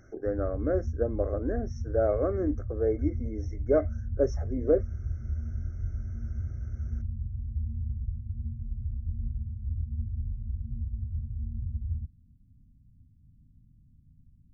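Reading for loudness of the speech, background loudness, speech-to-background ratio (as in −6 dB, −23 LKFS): −30.0 LKFS, −36.0 LKFS, 6.0 dB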